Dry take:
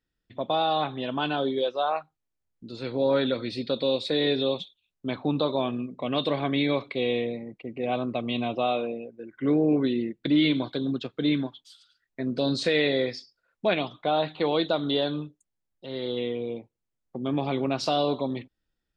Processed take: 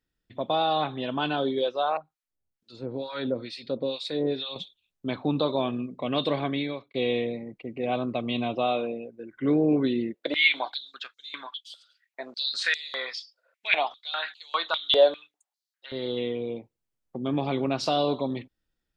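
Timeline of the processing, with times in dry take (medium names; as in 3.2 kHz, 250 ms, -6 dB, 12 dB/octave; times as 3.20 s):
1.97–4.56 s: harmonic tremolo 2.2 Hz, depth 100%, crossover 980 Hz
6.38–6.94 s: fade out
10.14–15.92 s: step-sequenced high-pass 5 Hz 570–6100 Hz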